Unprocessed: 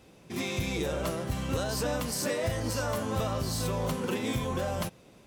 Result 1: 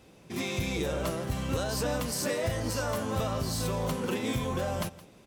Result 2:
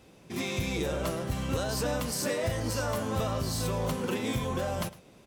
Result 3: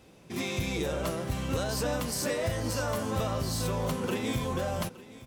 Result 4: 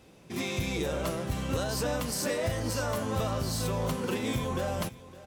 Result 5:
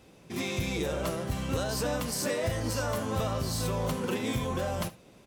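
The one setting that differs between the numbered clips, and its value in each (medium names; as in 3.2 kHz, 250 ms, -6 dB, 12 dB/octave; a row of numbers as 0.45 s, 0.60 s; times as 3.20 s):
delay, time: 168 ms, 107 ms, 867 ms, 560 ms, 71 ms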